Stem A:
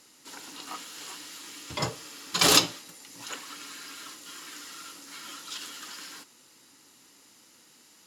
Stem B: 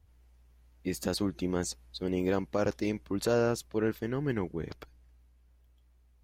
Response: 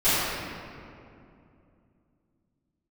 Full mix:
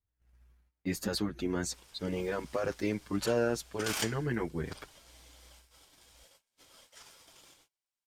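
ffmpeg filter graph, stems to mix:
-filter_complex "[0:a]highpass=350,aeval=exprs='val(0)*sin(2*PI*1900*n/s)':c=same,adelay=1450,volume=-12.5dB[a];[1:a]equalizer=f=1.6k:t=o:w=0.91:g=6,alimiter=limit=-22dB:level=0:latency=1:release=32,asplit=2[b][c];[c]adelay=7.1,afreqshift=1[d];[b][d]amix=inputs=2:normalize=1,volume=2.5dB[e];[a][e]amix=inputs=2:normalize=0,agate=range=-23dB:threshold=-58dB:ratio=16:detection=peak"

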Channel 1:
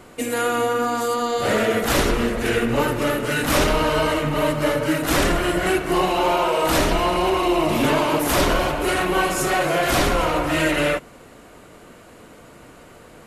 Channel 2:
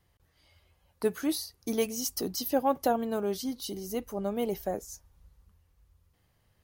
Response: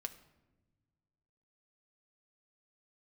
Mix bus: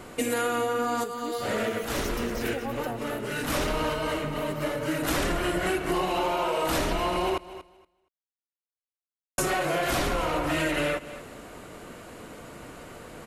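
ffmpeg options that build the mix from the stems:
-filter_complex "[0:a]volume=1.5dB,asplit=3[a][b][c];[a]atrim=end=7.38,asetpts=PTS-STARTPTS,afade=t=out:st=7.376:d=0.004:c=hsin[d];[b]atrim=start=7.38:end=9.38,asetpts=PTS-STARTPTS,volume=0[e];[c]atrim=start=9.38,asetpts=PTS-STARTPTS,afade=t=in:d=0.004:c=hsin[f];[d][e][f]concat=n=3:v=0:a=1,asplit=2[g][h];[h]volume=-22.5dB[i];[1:a]volume=-9.5dB,asplit=3[j][k][l];[k]volume=-10.5dB[m];[l]apad=whole_len=585158[n];[g][n]sidechaincompress=threshold=-46dB:ratio=8:attack=16:release=785[o];[i][m]amix=inputs=2:normalize=0,aecho=0:1:235|470|705:1|0.16|0.0256[p];[o][j][p]amix=inputs=3:normalize=0,acompressor=threshold=-24dB:ratio=6"

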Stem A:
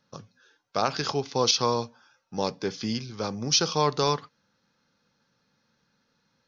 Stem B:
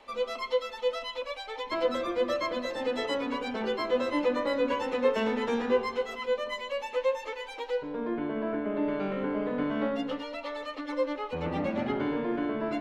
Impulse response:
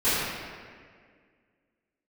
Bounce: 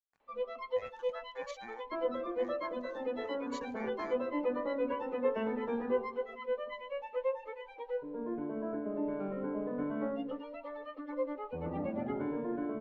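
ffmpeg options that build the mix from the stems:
-filter_complex "[0:a]aeval=exprs='sgn(val(0))*max(abs(val(0))-0.00841,0)':c=same,aeval=exprs='val(0)*sin(2*PI*1300*n/s)':c=same,volume=-18dB[a];[1:a]lowpass=f=2.7k:p=1,adelay=200,volume=-5.5dB[b];[a][b]amix=inputs=2:normalize=0,afftdn=nr=12:nf=-42,highshelf=f=3.7k:g=-7.5"

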